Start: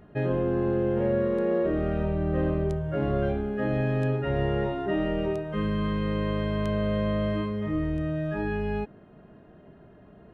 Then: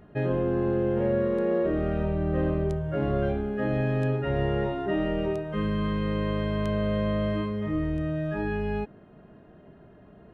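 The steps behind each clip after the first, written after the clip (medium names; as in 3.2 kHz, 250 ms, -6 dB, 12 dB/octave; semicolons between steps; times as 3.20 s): no audible change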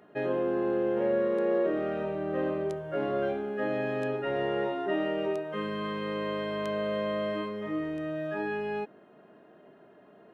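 high-pass 320 Hz 12 dB/octave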